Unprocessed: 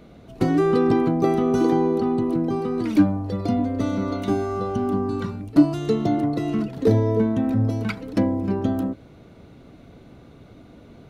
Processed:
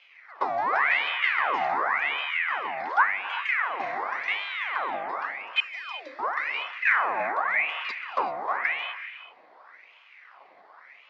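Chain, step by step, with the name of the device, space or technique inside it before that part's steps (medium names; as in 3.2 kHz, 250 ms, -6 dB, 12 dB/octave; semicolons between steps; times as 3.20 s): 5.60–6.19 s: inverse Chebyshev band-stop 270–850 Hz, stop band 50 dB; voice changer toy (ring modulator with a swept carrier 1.6 kHz, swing 75%, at 0.9 Hz; cabinet simulation 530–4800 Hz, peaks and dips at 750 Hz +4 dB, 1.1 kHz +6 dB, 2 kHz +7 dB, 2.9 kHz -6 dB); gated-style reverb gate 410 ms rising, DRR 10.5 dB; trim -5.5 dB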